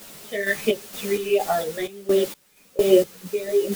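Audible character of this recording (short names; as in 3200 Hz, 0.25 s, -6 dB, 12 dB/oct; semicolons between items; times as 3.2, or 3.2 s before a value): phasing stages 8, 1.5 Hz, lowest notch 800–2300 Hz; a quantiser's noise floor 6-bit, dither triangular; random-step tremolo 4.3 Hz, depth 95%; a shimmering, thickened sound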